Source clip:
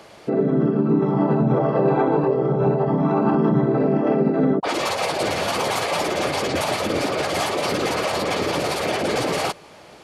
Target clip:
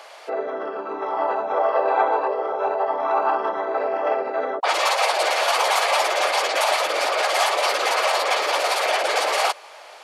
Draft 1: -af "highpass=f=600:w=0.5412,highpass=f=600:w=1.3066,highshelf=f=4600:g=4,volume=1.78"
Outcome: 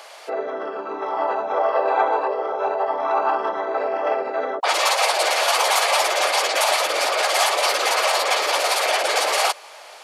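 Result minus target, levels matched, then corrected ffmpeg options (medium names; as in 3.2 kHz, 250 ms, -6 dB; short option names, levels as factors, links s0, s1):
8 kHz band +4.0 dB
-af "highpass=f=600:w=0.5412,highpass=f=600:w=1.3066,highshelf=f=4600:g=-3,volume=1.78"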